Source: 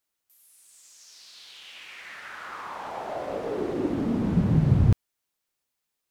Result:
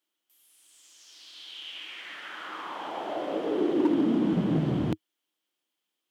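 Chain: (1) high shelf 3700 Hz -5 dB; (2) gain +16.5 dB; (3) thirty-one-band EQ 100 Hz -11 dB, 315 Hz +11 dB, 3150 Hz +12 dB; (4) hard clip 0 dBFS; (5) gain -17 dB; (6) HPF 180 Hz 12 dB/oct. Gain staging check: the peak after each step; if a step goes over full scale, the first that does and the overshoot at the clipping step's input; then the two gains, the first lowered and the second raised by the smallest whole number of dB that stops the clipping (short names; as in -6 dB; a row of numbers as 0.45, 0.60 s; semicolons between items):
-8.5, +8.0, +7.0, 0.0, -17.0, -13.0 dBFS; step 2, 7.0 dB; step 2 +9.5 dB, step 5 -10 dB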